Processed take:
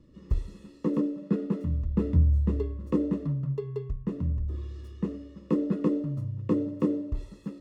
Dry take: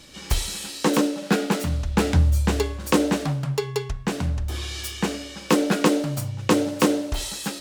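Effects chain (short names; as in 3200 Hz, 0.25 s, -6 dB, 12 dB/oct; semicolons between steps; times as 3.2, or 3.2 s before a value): running mean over 57 samples; gain -3 dB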